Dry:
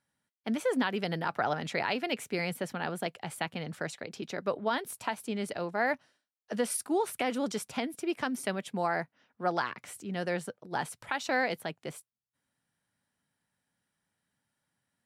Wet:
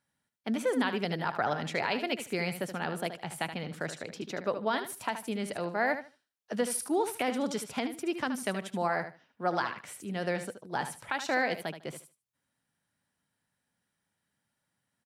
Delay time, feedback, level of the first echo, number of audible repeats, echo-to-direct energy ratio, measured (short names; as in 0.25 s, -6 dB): 75 ms, 19%, -10.0 dB, 2, -10.0 dB